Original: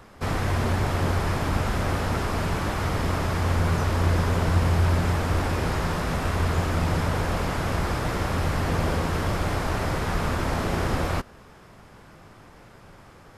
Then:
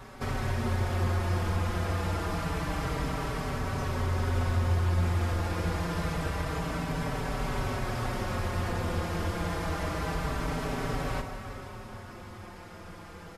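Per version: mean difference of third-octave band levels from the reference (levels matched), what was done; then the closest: 3.0 dB: compression 2:1, threshold -39 dBFS, peak gain reduction 12.5 dB; plate-style reverb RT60 3.9 s, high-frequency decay 0.8×, DRR 4 dB; endless flanger 4.8 ms -0.27 Hz; trim +5 dB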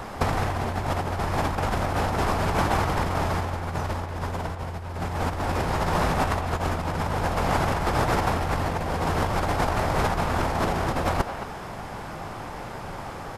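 5.0 dB: peaking EQ 800 Hz +7 dB 0.71 oct; compressor with a negative ratio -28 dBFS, ratio -0.5; speakerphone echo 220 ms, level -9 dB; trim +4.5 dB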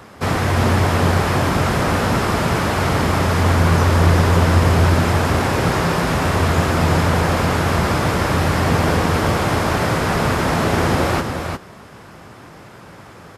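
1.5 dB: high-pass 84 Hz; delay 354 ms -6 dB; trim +8.5 dB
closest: third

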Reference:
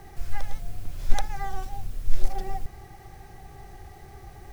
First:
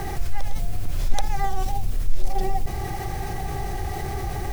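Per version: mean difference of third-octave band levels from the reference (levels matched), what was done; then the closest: 5.0 dB: dynamic bell 1.5 kHz, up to -6 dB, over -57 dBFS, Q 1.9; level flattener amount 50%; trim -2 dB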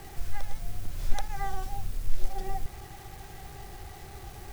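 3.5 dB: in parallel at +3 dB: compression 20:1, threshold -24 dBFS, peak gain reduction 18 dB; on the sum: bit crusher 7-bit; trim -7 dB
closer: second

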